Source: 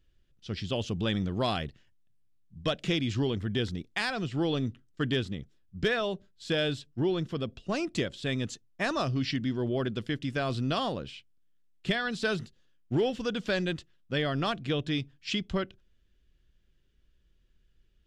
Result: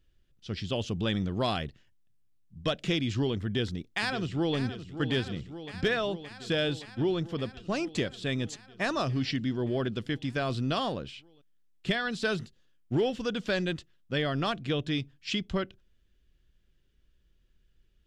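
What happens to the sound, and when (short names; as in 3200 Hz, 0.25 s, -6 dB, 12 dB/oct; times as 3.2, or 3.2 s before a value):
3.45–4.57 echo throw 0.57 s, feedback 80%, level -11.5 dB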